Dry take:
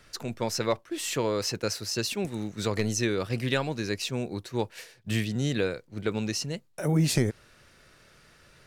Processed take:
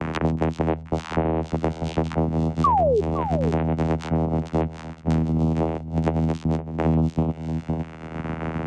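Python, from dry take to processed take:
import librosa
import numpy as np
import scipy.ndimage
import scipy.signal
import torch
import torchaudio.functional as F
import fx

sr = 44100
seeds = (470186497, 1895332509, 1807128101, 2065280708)

p1 = fx.env_lowpass(x, sr, base_hz=1400.0, full_db=-26.5)
p2 = fx.hum_notches(p1, sr, base_hz=60, count=4)
p3 = fx.env_lowpass_down(p2, sr, base_hz=1100.0, full_db=-22.5)
p4 = fx.level_steps(p3, sr, step_db=20)
p5 = p3 + (p4 * 10.0 ** (-1.5 / 20.0))
p6 = fx.vocoder(p5, sr, bands=4, carrier='saw', carrier_hz=80.3)
p7 = fx.spec_paint(p6, sr, seeds[0], shape='fall', start_s=2.64, length_s=0.37, low_hz=380.0, high_hz=1200.0, level_db=-17.0)
p8 = p7 + fx.echo_single(p7, sr, ms=512, db=-16.5, dry=0)
p9 = fx.band_squash(p8, sr, depth_pct=100)
y = p9 * 10.0 ** (5.5 / 20.0)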